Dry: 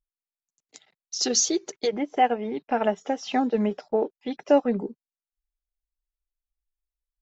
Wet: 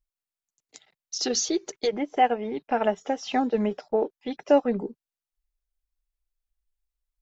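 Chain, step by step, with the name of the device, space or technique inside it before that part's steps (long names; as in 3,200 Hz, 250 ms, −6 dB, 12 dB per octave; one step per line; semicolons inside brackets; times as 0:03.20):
0:01.18–0:01.59: low-pass filter 5,100 Hz 12 dB per octave
low shelf boost with a cut just above (low-shelf EQ 74 Hz +7 dB; parametric band 220 Hz −2.5 dB 0.88 octaves)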